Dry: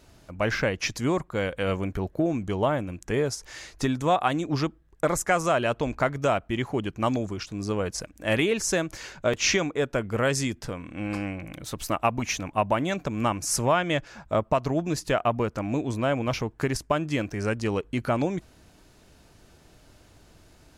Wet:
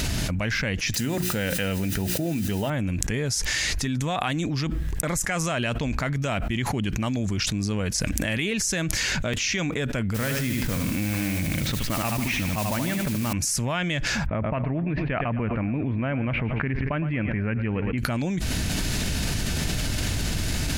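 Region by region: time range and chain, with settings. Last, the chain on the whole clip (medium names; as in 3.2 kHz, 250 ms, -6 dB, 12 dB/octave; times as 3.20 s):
0.94–2.70 s: hum notches 60/120/180/240/300/360 Hz + word length cut 8-bit, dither triangular + comb of notches 1.1 kHz
10.14–13.33 s: low-pass 2.5 kHz + modulation noise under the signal 13 dB + feedback delay 76 ms, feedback 39%, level -7 dB
14.26–17.98 s: steep low-pass 2.5 kHz + feedback delay 113 ms, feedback 50%, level -16.5 dB
whole clip: high-order bell 650 Hz -9 dB 2.4 oct; level flattener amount 100%; trim -4 dB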